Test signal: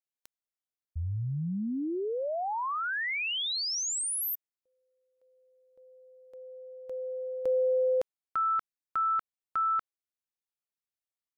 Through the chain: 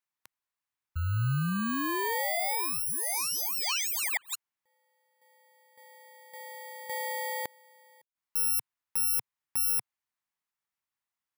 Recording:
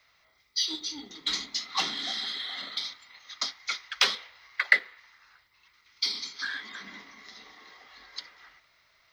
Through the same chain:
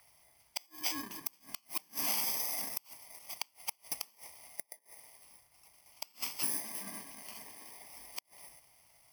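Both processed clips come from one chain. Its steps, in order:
samples in bit-reversed order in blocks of 32 samples
octave-band graphic EQ 125/500/1,000/2,000 Hz +5/−4/+9/+6 dB
gate with flip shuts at −20 dBFS, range −35 dB

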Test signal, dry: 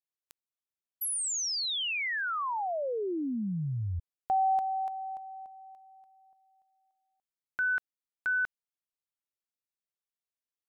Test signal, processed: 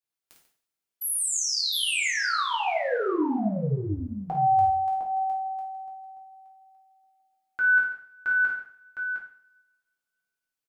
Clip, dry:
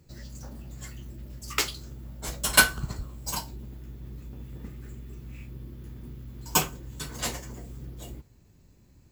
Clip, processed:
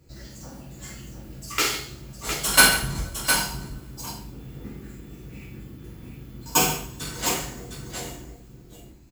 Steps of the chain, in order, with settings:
on a send: multi-tap delay 52/142/709 ms −6.5/−14.5/−7 dB
on the sum: coupled-rooms reverb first 0.48 s, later 2 s, from −27 dB, DRR −3.5 dB
level −1 dB

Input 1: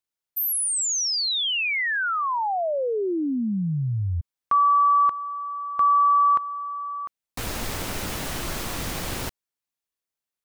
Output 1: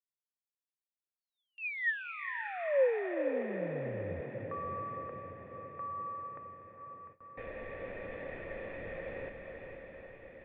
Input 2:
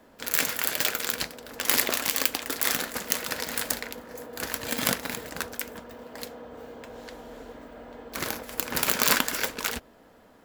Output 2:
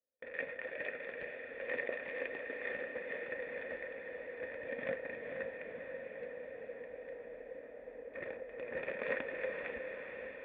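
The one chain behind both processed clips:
formant resonators in series e
feedback delay with all-pass diffusion 474 ms, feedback 67%, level −5.5 dB
noise gate with hold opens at −47 dBFS, closes at −49 dBFS, hold 43 ms, range −33 dB
level +1 dB

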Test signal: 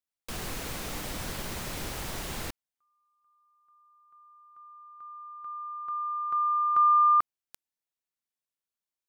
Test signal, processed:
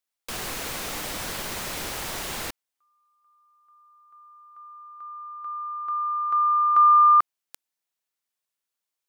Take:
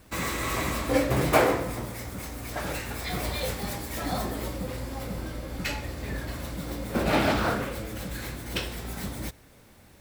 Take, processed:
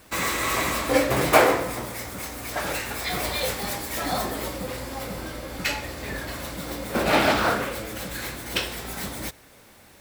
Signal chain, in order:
low-shelf EQ 280 Hz −10 dB
level +6 dB

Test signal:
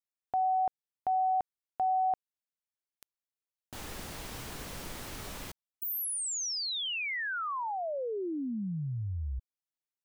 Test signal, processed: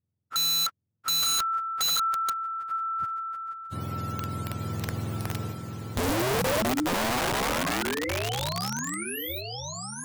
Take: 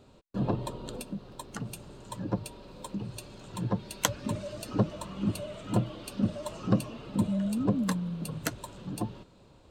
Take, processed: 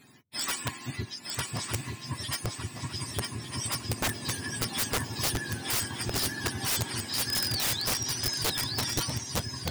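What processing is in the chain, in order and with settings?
frequency axis turned over on the octave scale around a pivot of 1,000 Hz
feedback echo with a long and a short gap by turns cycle 1,207 ms, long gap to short 3 to 1, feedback 39%, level −4 dB
wrap-around overflow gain 26 dB
level +4 dB

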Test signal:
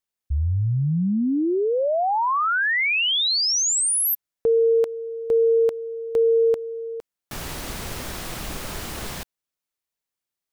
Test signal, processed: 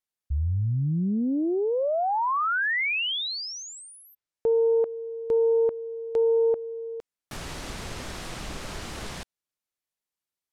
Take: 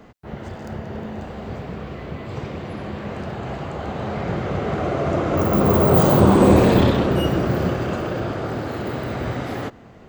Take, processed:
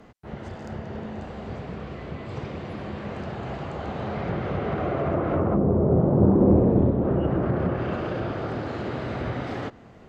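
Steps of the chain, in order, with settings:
treble cut that deepens with the level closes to 530 Hz, closed at −13 dBFS
highs frequency-modulated by the lows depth 0.2 ms
level −3.5 dB

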